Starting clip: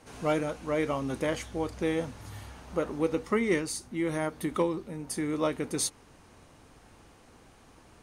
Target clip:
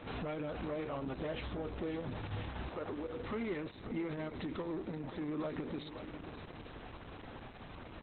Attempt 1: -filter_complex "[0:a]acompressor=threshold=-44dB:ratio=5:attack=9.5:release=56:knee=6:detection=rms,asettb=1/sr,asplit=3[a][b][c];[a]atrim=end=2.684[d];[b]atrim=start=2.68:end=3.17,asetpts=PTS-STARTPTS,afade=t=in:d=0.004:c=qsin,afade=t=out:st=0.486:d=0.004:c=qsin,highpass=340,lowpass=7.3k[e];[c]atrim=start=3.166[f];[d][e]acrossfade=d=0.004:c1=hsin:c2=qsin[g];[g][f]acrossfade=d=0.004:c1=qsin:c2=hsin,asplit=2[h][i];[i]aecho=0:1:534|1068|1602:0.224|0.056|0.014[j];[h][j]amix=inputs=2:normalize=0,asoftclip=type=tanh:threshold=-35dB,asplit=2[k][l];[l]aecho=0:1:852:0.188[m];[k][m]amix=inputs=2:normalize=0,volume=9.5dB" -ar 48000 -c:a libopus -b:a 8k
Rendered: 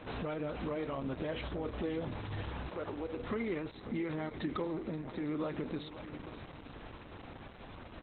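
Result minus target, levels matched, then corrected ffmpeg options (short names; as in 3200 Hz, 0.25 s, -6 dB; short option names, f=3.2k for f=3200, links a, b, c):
soft clip: distortion -8 dB
-filter_complex "[0:a]acompressor=threshold=-44dB:ratio=5:attack=9.5:release=56:knee=6:detection=rms,asettb=1/sr,asplit=3[a][b][c];[a]atrim=end=2.684[d];[b]atrim=start=2.68:end=3.17,asetpts=PTS-STARTPTS,afade=t=in:d=0.004:c=qsin,afade=t=out:st=0.486:d=0.004:c=qsin,highpass=340,lowpass=7.3k[e];[c]atrim=start=3.166[f];[d][e]acrossfade=d=0.004:c1=hsin:c2=qsin[g];[g][f]acrossfade=d=0.004:c1=qsin:c2=hsin,asplit=2[h][i];[i]aecho=0:1:534|1068|1602:0.224|0.056|0.014[j];[h][j]amix=inputs=2:normalize=0,asoftclip=type=tanh:threshold=-41dB,asplit=2[k][l];[l]aecho=0:1:852:0.188[m];[k][m]amix=inputs=2:normalize=0,volume=9.5dB" -ar 48000 -c:a libopus -b:a 8k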